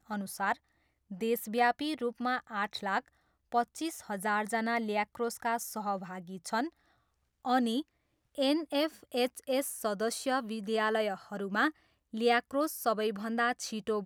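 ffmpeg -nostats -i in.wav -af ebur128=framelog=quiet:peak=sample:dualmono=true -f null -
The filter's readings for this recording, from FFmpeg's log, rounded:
Integrated loudness:
  I:         -29.6 LUFS
  Threshold: -39.8 LUFS
Loudness range:
  LRA:         2.8 LU
  Threshold: -50.2 LUFS
  LRA low:   -31.5 LUFS
  LRA high:  -28.7 LUFS
Sample peak:
  Peak:      -13.9 dBFS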